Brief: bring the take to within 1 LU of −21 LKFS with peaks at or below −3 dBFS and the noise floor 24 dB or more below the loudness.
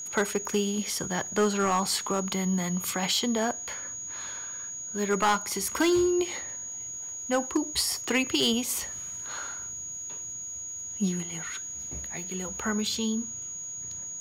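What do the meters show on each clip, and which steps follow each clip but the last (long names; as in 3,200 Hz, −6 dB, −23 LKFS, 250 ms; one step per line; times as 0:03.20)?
share of clipped samples 0.4%; peaks flattened at −18.0 dBFS; interfering tone 6,700 Hz; level of the tone −35 dBFS; integrated loudness −29.0 LKFS; sample peak −18.0 dBFS; target loudness −21.0 LKFS
→ clipped peaks rebuilt −18 dBFS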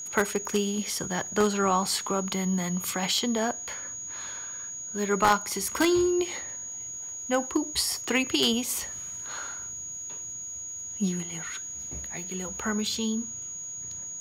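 share of clipped samples 0.0%; interfering tone 6,700 Hz; level of the tone −35 dBFS
→ notch filter 6,700 Hz, Q 30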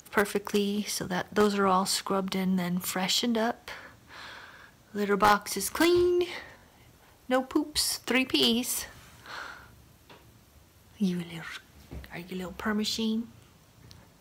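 interfering tone none found; integrated loudness −27.5 LKFS; sample peak −8.5 dBFS; target loudness −21.0 LKFS
→ level +6.5 dB
brickwall limiter −3 dBFS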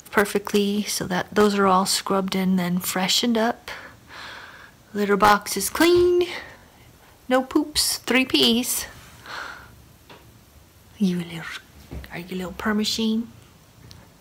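integrated loudness −21.0 LKFS; sample peak −3.0 dBFS; background noise floor −52 dBFS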